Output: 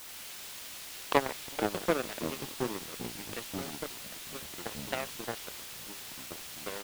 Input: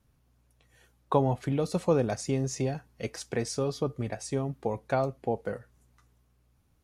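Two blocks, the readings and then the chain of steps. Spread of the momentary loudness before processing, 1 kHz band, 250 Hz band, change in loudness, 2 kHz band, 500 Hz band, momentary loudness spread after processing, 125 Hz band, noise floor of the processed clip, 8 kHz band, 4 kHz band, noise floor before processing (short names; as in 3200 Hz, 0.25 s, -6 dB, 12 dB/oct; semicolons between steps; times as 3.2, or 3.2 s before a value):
10 LU, -2.5 dB, -6.5 dB, -6.0 dB, +4.5 dB, -6.5 dB, 11 LU, -14.5 dB, -45 dBFS, +1.0 dB, +5.5 dB, -68 dBFS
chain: CVSD 64 kbps; elliptic high-pass 180 Hz; on a send: feedback echo 0.14 s, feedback 46%, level -11 dB; on the sum: added harmonics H 2 -16 dB, 3 -12 dB, 4 -22 dB, 7 -28 dB, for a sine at -11.5 dBFS; in parallel at -11 dB: requantised 6-bit, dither triangular; on the sum: echoes that change speed 90 ms, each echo -5 st, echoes 3, each echo -6 dB; dynamic EQ 3200 Hz, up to +6 dB, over -54 dBFS, Q 0.85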